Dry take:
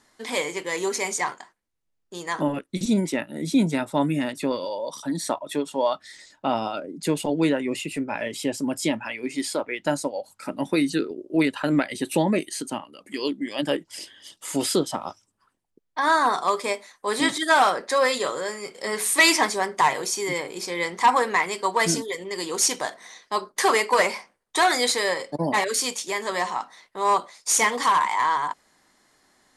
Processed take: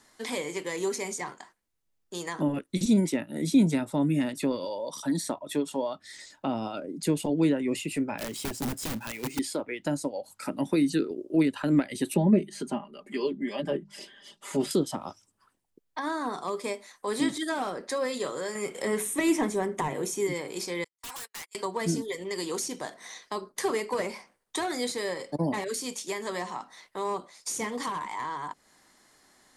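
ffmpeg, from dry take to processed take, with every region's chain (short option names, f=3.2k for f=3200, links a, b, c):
-filter_complex "[0:a]asettb=1/sr,asplit=3[a][b][c];[a]atrim=end=8.184[d];[b]atrim=start=8.18:end=9.39,asetpts=PTS-STARTPTS,afade=t=in:d=0.004:c=qsin,afade=t=out:st=1.206:d=0.004:c=qsin,aeval=exprs='(mod(11.2*val(0)+1,2)-1)/11.2':c=same,acrusher=bits=2:mode=log:mix=0:aa=0.000001[e];[c]atrim=start=9.386[f];[d][e]acrossfade=d=0.004:c1=hsin:c2=qsin[g];[g][f]acrossfade=d=0.004:c1=qsin:c2=hsin,asettb=1/sr,asplit=3[h][i][j];[h]atrim=end=12.144[k];[i]atrim=start=12.14:end=14.71,asetpts=PTS-STARTPTS,afade=t=in:d=0.004:c=qsin,afade=t=out:st=2.566:d=0.004:c=qsin,lowpass=f=1.5k:p=1,bandreject=f=50:t=h:w=6,bandreject=f=100:t=h:w=6,bandreject=f=150:t=h:w=6,bandreject=f=200:t=h:w=6,aecho=1:1:5:0.82,atrim=end_sample=113337[l];[j]atrim=start=14.706[m];[k][l]acrossfade=d=0.004:c1=hsin:c2=qsin[n];[n][m]acrossfade=d=0.004:c1=qsin:c2=hsin,asettb=1/sr,asplit=3[o][p][q];[o]atrim=end=18.554[r];[p]atrim=start=18.55:end=20.27,asetpts=PTS-STARTPTS,afade=t=in:d=0.004:c=qsin,afade=t=out:st=1.716:d=0.004:c=qsin,equalizer=f=4.7k:t=o:w=0.33:g=-13.5,acontrast=43[s];[q]atrim=start=20.266[t];[r][s]acrossfade=d=0.004:c1=hsin:c2=qsin[u];[u][t]acrossfade=d=0.004:c1=qsin:c2=hsin,asettb=1/sr,asplit=3[v][w][x];[v]atrim=end=20.844[y];[w]atrim=start=20.84:end=21.55,asetpts=PTS-STARTPTS,afade=t=in:d=0.004:c=qsin,afade=t=out:st=0.706:d=0.004:c=qsin,agate=range=-46dB:threshold=-25dB:ratio=16:release=100:detection=peak,aderivative,aeval=exprs='0.0168*(abs(mod(val(0)/0.0168+3,4)-2)-1)':c=same[z];[x]atrim=start=21.546[aa];[y][z]acrossfade=d=0.004:c1=hsin:c2=qsin[ab];[ab][aa]acrossfade=d=0.004:c1=qsin:c2=hsin,highshelf=f=6.8k:g=4.5,acrossover=split=400[ac][ad];[ad]acompressor=threshold=-34dB:ratio=5[ae];[ac][ae]amix=inputs=2:normalize=0"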